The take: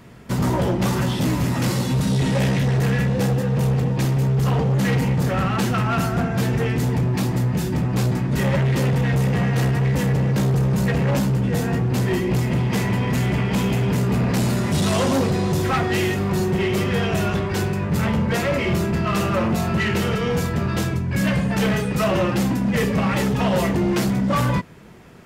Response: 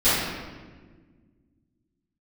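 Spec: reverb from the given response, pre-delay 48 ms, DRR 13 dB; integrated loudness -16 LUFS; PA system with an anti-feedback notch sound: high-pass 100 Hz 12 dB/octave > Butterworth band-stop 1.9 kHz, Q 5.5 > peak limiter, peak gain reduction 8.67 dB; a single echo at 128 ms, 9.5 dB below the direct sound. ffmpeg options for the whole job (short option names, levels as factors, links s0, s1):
-filter_complex "[0:a]aecho=1:1:128:0.335,asplit=2[s0][s1];[1:a]atrim=start_sample=2205,adelay=48[s2];[s1][s2]afir=irnorm=-1:irlink=0,volume=0.0266[s3];[s0][s3]amix=inputs=2:normalize=0,highpass=100,asuperstop=centerf=1900:order=8:qfactor=5.5,volume=2.99,alimiter=limit=0.422:level=0:latency=1"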